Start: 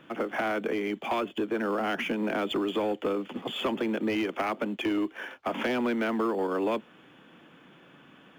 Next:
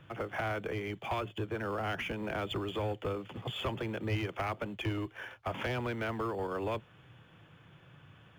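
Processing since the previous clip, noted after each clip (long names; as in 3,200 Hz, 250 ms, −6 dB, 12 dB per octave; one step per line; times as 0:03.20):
low shelf with overshoot 160 Hz +13.5 dB, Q 3
level −5 dB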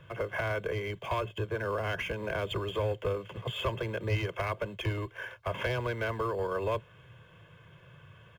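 comb filter 1.9 ms, depth 70%
level +1 dB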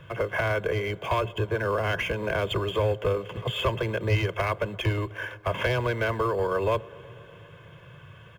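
delay with a low-pass on its return 122 ms, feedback 79%, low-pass 1,400 Hz, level −23 dB
level +6 dB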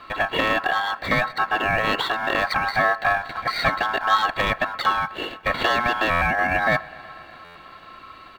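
ring modulation 1,200 Hz
buffer that repeats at 0:06.10/0:07.44, samples 512, times 9
level +7.5 dB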